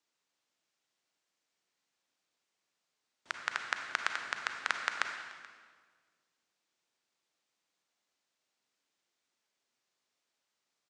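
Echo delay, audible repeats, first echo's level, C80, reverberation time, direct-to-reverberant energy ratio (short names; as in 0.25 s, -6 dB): 0.431 s, 1, -22.0 dB, 6.5 dB, 1.7 s, 4.5 dB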